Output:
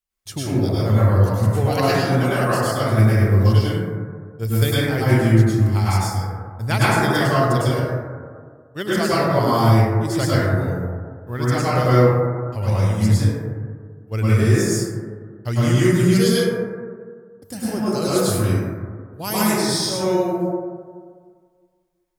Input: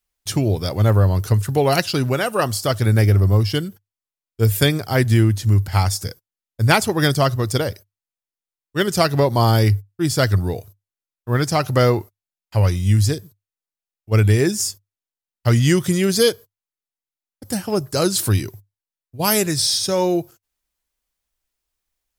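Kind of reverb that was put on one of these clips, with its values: plate-style reverb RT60 1.8 s, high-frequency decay 0.25×, pre-delay 90 ms, DRR -9.5 dB; trim -9.5 dB

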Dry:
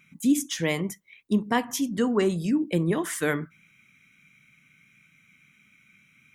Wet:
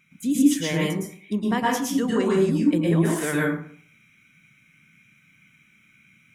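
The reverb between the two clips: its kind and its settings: plate-style reverb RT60 0.52 s, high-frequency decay 0.6×, pre-delay 100 ms, DRR -4 dB; trim -3 dB

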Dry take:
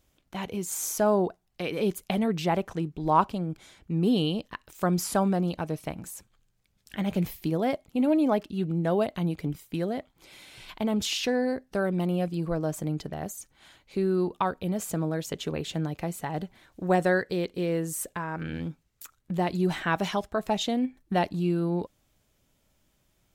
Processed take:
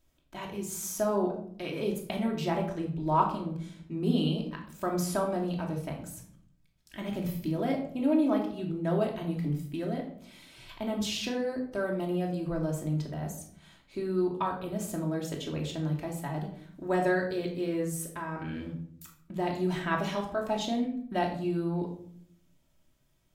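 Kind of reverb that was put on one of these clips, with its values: simulated room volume 960 m³, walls furnished, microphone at 2.8 m; trim -7 dB

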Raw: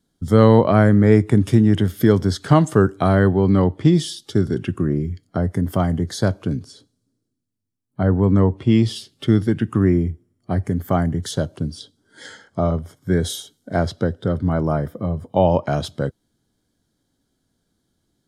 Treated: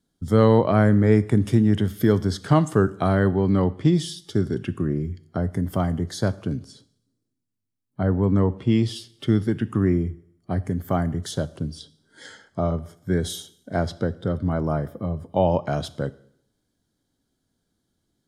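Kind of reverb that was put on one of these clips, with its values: Schroeder reverb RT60 0.7 s, combs from 26 ms, DRR 17.5 dB; trim -4 dB

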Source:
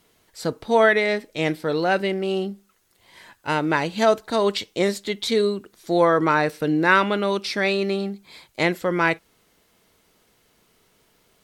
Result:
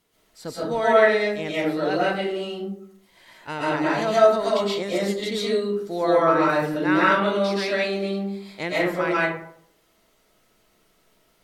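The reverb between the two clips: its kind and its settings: algorithmic reverb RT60 0.66 s, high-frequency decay 0.45×, pre-delay 90 ms, DRR -7.5 dB; trim -9 dB

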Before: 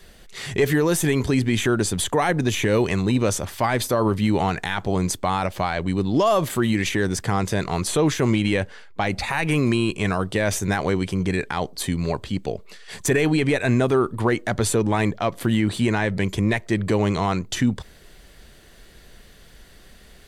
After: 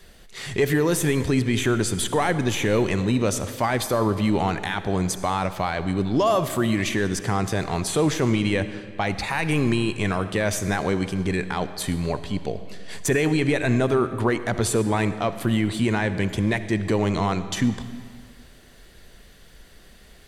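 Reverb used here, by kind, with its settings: algorithmic reverb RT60 1.9 s, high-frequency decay 0.85×, pre-delay 25 ms, DRR 11.5 dB; trim -1.5 dB

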